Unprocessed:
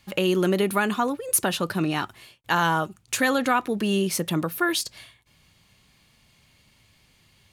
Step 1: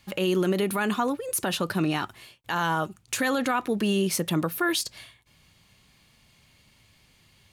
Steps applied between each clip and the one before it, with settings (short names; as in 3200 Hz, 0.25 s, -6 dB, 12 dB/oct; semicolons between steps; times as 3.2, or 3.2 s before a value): limiter -16 dBFS, peak gain reduction 8.5 dB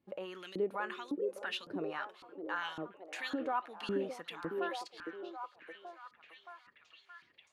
LFO band-pass saw up 1.8 Hz 290–4600 Hz; delay with a stepping band-pass 0.62 s, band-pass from 380 Hz, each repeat 0.7 oct, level -2.5 dB; gain -4.5 dB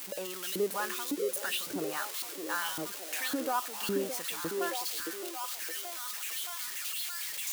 switching spikes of -30 dBFS; gain +3 dB